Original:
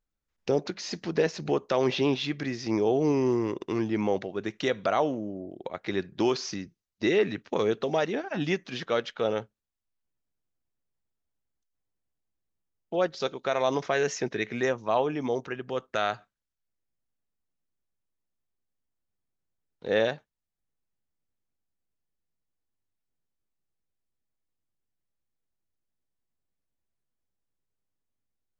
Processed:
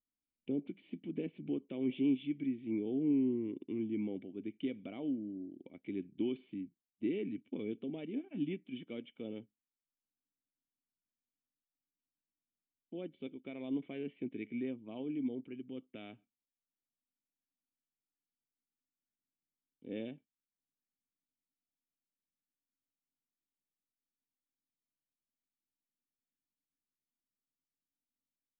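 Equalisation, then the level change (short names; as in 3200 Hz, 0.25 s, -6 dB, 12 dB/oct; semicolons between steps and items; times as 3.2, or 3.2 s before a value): vocal tract filter i; air absorption 120 m; low shelf 85 Hz -10 dB; 0.0 dB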